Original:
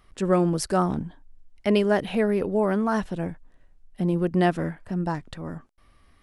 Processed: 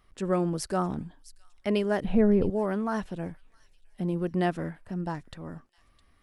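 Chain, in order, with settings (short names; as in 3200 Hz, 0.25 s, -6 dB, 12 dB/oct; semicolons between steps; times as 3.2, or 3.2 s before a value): 2.04–2.5 tilt -4 dB/oct; thin delay 0.66 s, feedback 40%, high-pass 3400 Hz, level -15.5 dB; gain -5.5 dB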